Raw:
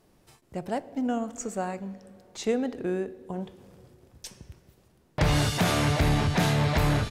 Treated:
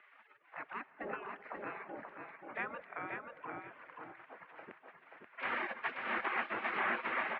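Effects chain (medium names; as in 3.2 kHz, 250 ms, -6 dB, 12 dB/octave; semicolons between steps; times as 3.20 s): spectral gate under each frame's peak -25 dB weak; reverb removal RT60 0.69 s; upward compressor, threshold -45 dBFS; feedback delay 511 ms, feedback 22%, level -5 dB; on a send at -18.5 dB: reverberation, pre-delay 3 ms; on the sum: speed mistake 25 fps video run at 24 fps; mistuned SSB -130 Hz 340–2300 Hz; trim +7.5 dB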